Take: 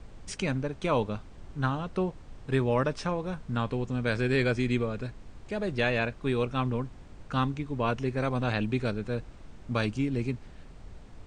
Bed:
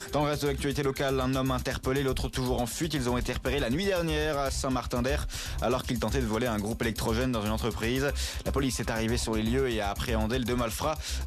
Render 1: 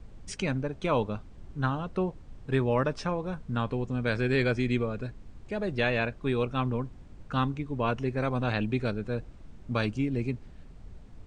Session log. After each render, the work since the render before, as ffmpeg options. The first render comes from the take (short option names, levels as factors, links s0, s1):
-af "afftdn=nr=6:nf=-48"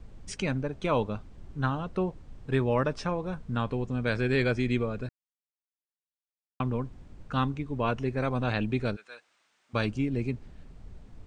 -filter_complex "[0:a]asplit=3[s0][s1][s2];[s0]afade=t=out:st=8.95:d=0.02[s3];[s1]highpass=1400,afade=t=in:st=8.95:d=0.02,afade=t=out:st=9.73:d=0.02[s4];[s2]afade=t=in:st=9.73:d=0.02[s5];[s3][s4][s5]amix=inputs=3:normalize=0,asplit=3[s6][s7][s8];[s6]atrim=end=5.09,asetpts=PTS-STARTPTS,afade=t=out:st=5.086:d=0.004:c=hsin[s9];[s7]atrim=start=5.09:end=6.6,asetpts=PTS-STARTPTS,volume=0[s10];[s8]atrim=start=6.6,asetpts=PTS-STARTPTS,afade=t=in:d=0.004:c=hsin[s11];[s9][s10][s11]concat=n=3:v=0:a=1"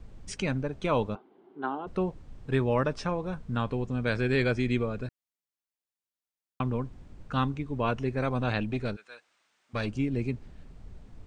-filter_complex "[0:a]asplit=3[s0][s1][s2];[s0]afade=t=out:st=1.14:d=0.02[s3];[s1]highpass=f=280:w=0.5412,highpass=f=280:w=1.3066,equalizer=f=380:t=q:w=4:g=9,equalizer=f=560:t=q:w=4:g=-7,equalizer=f=800:t=q:w=4:g=5,equalizer=f=1200:t=q:w=4:g=-4,equalizer=f=1800:t=q:w=4:g=-8,equalizer=f=2500:t=q:w=4:g=-9,lowpass=f=2800:w=0.5412,lowpass=f=2800:w=1.3066,afade=t=in:st=1.14:d=0.02,afade=t=out:st=1.86:d=0.02[s4];[s2]afade=t=in:st=1.86:d=0.02[s5];[s3][s4][s5]amix=inputs=3:normalize=0,asettb=1/sr,asplit=3[s6][s7][s8];[s6]atrim=end=8.604[s9];[s7]atrim=start=8.6:end=9.93,asetpts=PTS-STARTPTS,afade=t=in:d=0.004:c=qsin,afade=t=out:st=1.326:d=0.004:c=qsin,aeval=exprs='(tanh(7.08*val(0)+0.4)-tanh(0.4))/7.08':c=same[s10];[s8]atrim=start=9.926[s11];[s9][s10]acrossfade=d=0.004:c1=hsin:c2=qsin[s12];[s12][s11]acrossfade=d=0.004:c1=qsin:c2=hsin"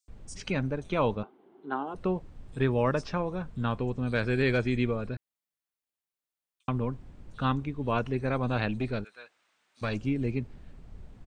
-filter_complex "[0:a]acrossover=split=5800[s0][s1];[s0]adelay=80[s2];[s2][s1]amix=inputs=2:normalize=0"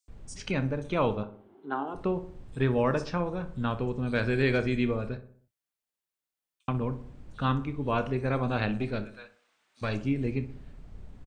-filter_complex "[0:a]asplit=2[s0][s1];[s1]adelay=29,volume=0.224[s2];[s0][s2]amix=inputs=2:normalize=0,asplit=2[s3][s4];[s4]adelay=62,lowpass=f=1800:p=1,volume=0.251,asplit=2[s5][s6];[s6]adelay=62,lowpass=f=1800:p=1,volume=0.52,asplit=2[s7][s8];[s8]adelay=62,lowpass=f=1800:p=1,volume=0.52,asplit=2[s9][s10];[s10]adelay=62,lowpass=f=1800:p=1,volume=0.52,asplit=2[s11][s12];[s12]adelay=62,lowpass=f=1800:p=1,volume=0.52[s13];[s3][s5][s7][s9][s11][s13]amix=inputs=6:normalize=0"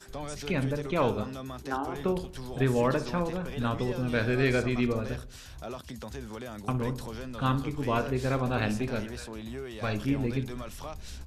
-filter_complex "[1:a]volume=0.266[s0];[0:a][s0]amix=inputs=2:normalize=0"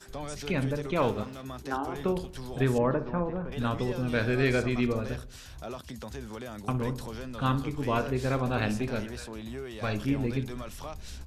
-filter_complex "[0:a]asettb=1/sr,asplit=3[s0][s1][s2];[s0]atrim=end=1.024[s3];[s1]atrim=start=1.02:end=1.45,asetpts=PTS-STARTPTS,afade=t=in:d=0.004:c=qsin,afade=t=out:st=0.426:d=0.004:c=qsin,aeval=exprs='sgn(val(0))*max(abs(val(0))-0.00473,0)':c=same[s4];[s2]atrim=start=1.446[s5];[s3][s4]acrossfade=d=0.004:c1=hsin:c2=qsin[s6];[s6][s5]acrossfade=d=0.004:c1=qsin:c2=hsin,asettb=1/sr,asplit=3[s7][s8][s9];[s7]atrim=end=2.784[s10];[s8]atrim=start=2.78:end=3.52,asetpts=PTS-STARTPTS,afade=t=in:d=0.004:c=qsin,afade=t=out:st=0.736:d=0.004:c=qsin,lowpass=1400[s11];[s9]atrim=start=3.516[s12];[s10][s11]acrossfade=d=0.004:c1=hsin:c2=qsin[s13];[s13][s12]acrossfade=d=0.004:c1=qsin:c2=hsin"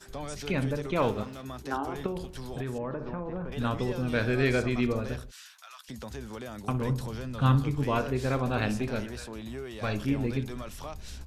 -filter_complex "[0:a]asettb=1/sr,asplit=3[s0][s1][s2];[s0]atrim=end=2.064[s3];[s1]atrim=start=2.06:end=3.48,asetpts=PTS-STARTPTS,afade=t=in:d=0.004:c=qsin,afade=t=out:st=1.416:d=0.004:c=qsin,acompressor=threshold=0.0316:ratio=5:attack=3.2:release=140:knee=1:detection=peak[s4];[s2]atrim=start=3.476[s5];[s3][s4]acrossfade=d=0.004:c1=hsin:c2=qsin[s6];[s6][s5]acrossfade=d=0.004:c1=qsin:c2=hsin,asplit=3[s7][s8][s9];[s7]afade=t=out:st=5.3:d=0.02[s10];[s8]highpass=f=1200:w=0.5412,highpass=f=1200:w=1.3066,afade=t=in:st=5.3:d=0.02,afade=t=out:st=5.88:d=0.02[s11];[s9]afade=t=in:st=5.88:d=0.02[s12];[s10][s11][s12]amix=inputs=3:normalize=0,asettb=1/sr,asplit=3[s13][s14][s15];[s13]atrim=end=6.894[s16];[s14]atrim=start=6.89:end=7.84,asetpts=PTS-STARTPTS,afade=t=in:d=0.004:c=qsin,afade=t=out:st=0.946:d=0.004:c=qsin,equalizer=f=130:w=1.5:g=7.5[s17];[s15]atrim=start=7.836[s18];[s16][s17]acrossfade=d=0.004:c1=hsin:c2=qsin[s19];[s19][s18]acrossfade=d=0.004:c1=qsin:c2=hsin"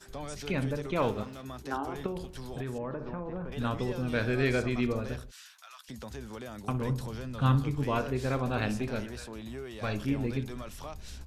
-af "volume=0.794"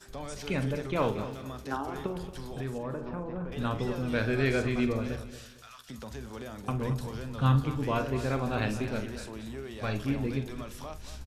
-filter_complex "[0:a]asplit=2[s0][s1];[s1]adelay=45,volume=0.251[s2];[s0][s2]amix=inputs=2:normalize=0,aecho=1:1:228|456|684:0.237|0.0735|0.0228"